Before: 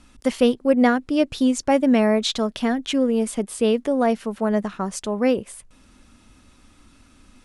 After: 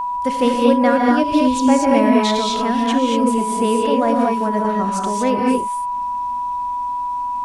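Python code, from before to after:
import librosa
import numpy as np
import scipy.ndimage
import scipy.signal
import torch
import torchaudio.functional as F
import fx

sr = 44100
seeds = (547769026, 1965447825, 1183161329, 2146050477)

y = fx.rev_gated(x, sr, seeds[0], gate_ms=260, shape='rising', drr_db=-2.0)
y = y + 10.0 ** (-19.0 / 20.0) * np.sin(2.0 * np.pi * 980.0 * np.arange(len(y)) / sr)
y = y * librosa.db_to_amplitude(-1.0)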